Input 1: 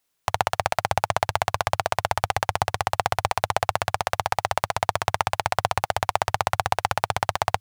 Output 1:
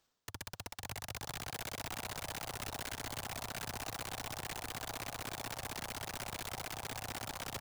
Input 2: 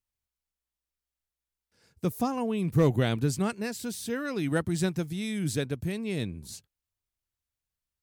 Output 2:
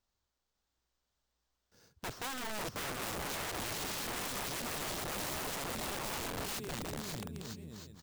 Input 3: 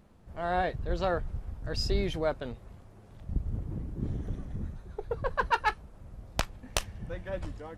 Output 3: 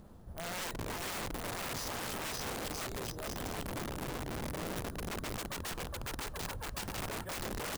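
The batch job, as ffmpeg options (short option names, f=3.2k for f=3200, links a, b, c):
-af "acrusher=samples=4:mix=1:aa=0.000001,areverse,acompressor=threshold=-40dB:ratio=4,areverse,equalizer=f=2.3k:w=1.6:g=-7.5,aecho=1:1:550|962.5|1272|1504|1678:0.631|0.398|0.251|0.158|0.1,aeval=exprs='(mod(89.1*val(0)+1,2)-1)/89.1':c=same,volume=5dB"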